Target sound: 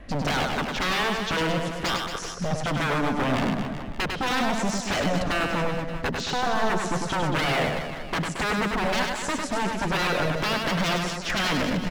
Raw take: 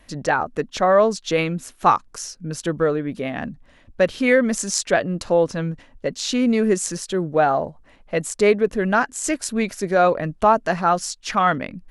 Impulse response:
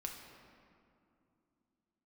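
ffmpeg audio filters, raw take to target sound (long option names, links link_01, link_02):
-filter_complex "[0:a]bandreject=frequency=940:width=5.6,acompressor=threshold=-27dB:ratio=3,highshelf=frequency=2300:gain=-7.5,acontrast=56,aemphasis=mode=reproduction:type=75fm,aeval=exprs='0.0596*(abs(mod(val(0)/0.0596+3,4)-2)-1)':channel_layout=same,asplit=2[link_01][link_02];[link_02]aecho=0:1:100|225|381.2|576.6|820.7:0.631|0.398|0.251|0.158|0.1[link_03];[link_01][link_03]amix=inputs=2:normalize=0,volume=3.5dB"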